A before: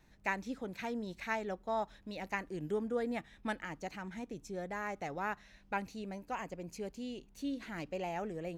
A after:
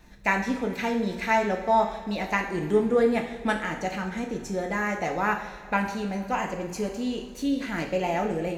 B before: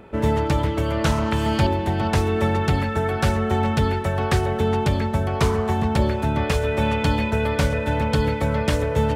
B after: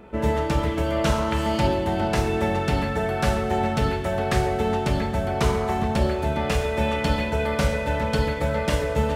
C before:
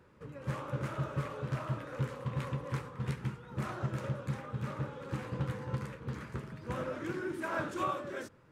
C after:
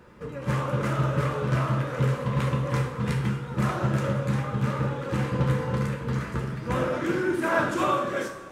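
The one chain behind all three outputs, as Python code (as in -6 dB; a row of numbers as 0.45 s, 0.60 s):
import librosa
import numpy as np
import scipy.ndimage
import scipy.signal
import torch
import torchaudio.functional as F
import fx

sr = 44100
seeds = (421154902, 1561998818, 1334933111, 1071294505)

y = fx.rev_double_slope(x, sr, seeds[0], early_s=0.59, late_s=3.3, knee_db=-16, drr_db=1.5)
y = y * 10.0 ** (-9 / 20.0) / np.max(np.abs(y))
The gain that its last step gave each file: +10.0 dB, -3.0 dB, +9.0 dB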